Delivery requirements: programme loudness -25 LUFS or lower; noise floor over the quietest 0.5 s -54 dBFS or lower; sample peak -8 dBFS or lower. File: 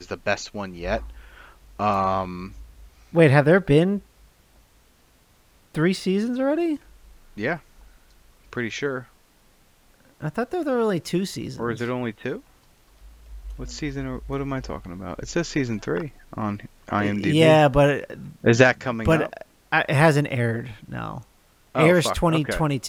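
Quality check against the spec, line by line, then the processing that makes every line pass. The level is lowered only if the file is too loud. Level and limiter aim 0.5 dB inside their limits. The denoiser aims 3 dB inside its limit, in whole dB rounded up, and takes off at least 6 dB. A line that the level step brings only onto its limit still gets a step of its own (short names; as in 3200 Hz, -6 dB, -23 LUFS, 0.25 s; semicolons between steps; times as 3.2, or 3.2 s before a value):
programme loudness -22.5 LUFS: fail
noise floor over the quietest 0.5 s -58 dBFS: OK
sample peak -2.0 dBFS: fail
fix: gain -3 dB; limiter -8.5 dBFS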